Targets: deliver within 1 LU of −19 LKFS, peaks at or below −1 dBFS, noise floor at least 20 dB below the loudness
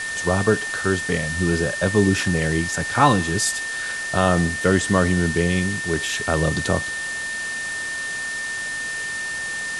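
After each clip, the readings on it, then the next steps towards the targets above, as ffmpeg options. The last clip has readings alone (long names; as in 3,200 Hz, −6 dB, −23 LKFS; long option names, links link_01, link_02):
interfering tone 1,800 Hz; level of the tone −26 dBFS; background noise floor −28 dBFS; target noise floor −42 dBFS; integrated loudness −21.5 LKFS; sample peak −2.5 dBFS; target loudness −19.0 LKFS
→ -af "bandreject=frequency=1800:width=30"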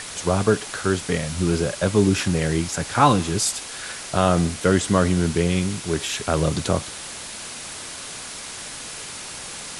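interfering tone none found; background noise floor −35 dBFS; target noise floor −43 dBFS
→ -af "afftdn=noise_reduction=8:noise_floor=-35"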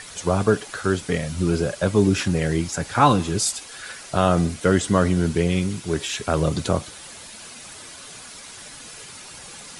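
background noise floor −41 dBFS; target noise floor −42 dBFS
→ -af "afftdn=noise_reduction=6:noise_floor=-41"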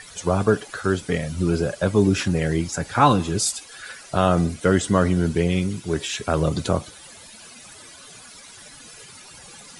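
background noise floor −44 dBFS; integrated loudness −22.0 LKFS; sample peak −3.0 dBFS; target loudness −19.0 LKFS
→ -af "volume=3dB,alimiter=limit=-1dB:level=0:latency=1"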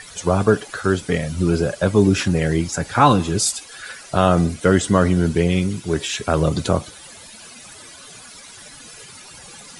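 integrated loudness −19.0 LKFS; sample peak −1.0 dBFS; background noise floor −41 dBFS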